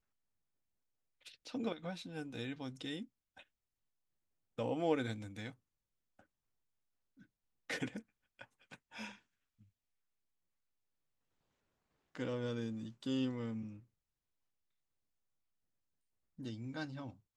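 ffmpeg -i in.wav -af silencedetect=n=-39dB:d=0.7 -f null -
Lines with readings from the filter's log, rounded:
silence_start: 0.00
silence_end: 1.47 | silence_duration: 1.47
silence_start: 3.02
silence_end: 4.59 | silence_duration: 1.56
silence_start: 5.49
silence_end: 7.70 | silence_duration: 2.21
silence_start: 9.08
silence_end: 12.15 | silence_duration: 3.07
silence_start: 13.62
silence_end: 16.45 | silence_duration: 2.83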